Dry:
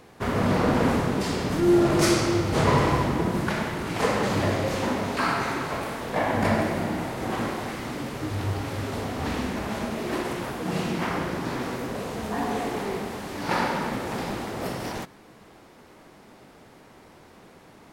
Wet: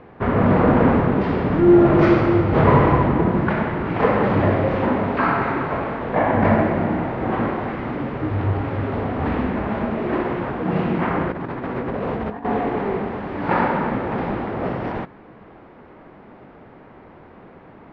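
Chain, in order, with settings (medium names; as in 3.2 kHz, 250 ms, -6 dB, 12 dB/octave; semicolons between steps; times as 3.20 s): Bessel low-pass 1.7 kHz, order 4; 11.30–12.45 s: compressor with a negative ratio -33 dBFS, ratio -0.5; trim +7 dB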